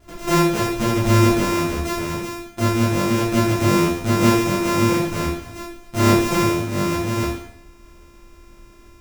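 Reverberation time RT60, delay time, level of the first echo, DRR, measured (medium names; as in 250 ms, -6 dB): 0.70 s, no echo, no echo, -9.0 dB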